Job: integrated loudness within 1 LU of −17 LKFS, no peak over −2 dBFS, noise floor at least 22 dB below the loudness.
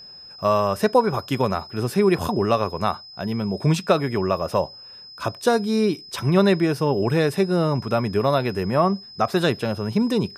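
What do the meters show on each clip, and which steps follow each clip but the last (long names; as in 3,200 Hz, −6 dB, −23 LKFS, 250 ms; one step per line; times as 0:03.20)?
interfering tone 5,100 Hz; level of the tone −40 dBFS; integrated loudness −22.0 LKFS; sample peak −4.0 dBFS; target loudness −17.0 LKFS
→ notch filter 5,100 Hz, Q 30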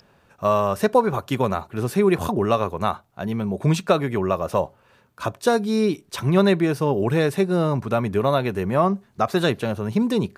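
interfering tone none found; integrated loudness −22.0 LKFS; sample peak −4.0 dBFS; target loudness −17.0 LKFS
→ level +5 dB
brickwall limiter −2 dBFS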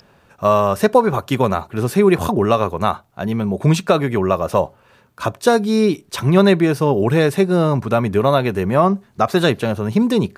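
integrated loudness −17.0 LKFS; sample peak −2.0 dBFS; background noise floor −54 dBFS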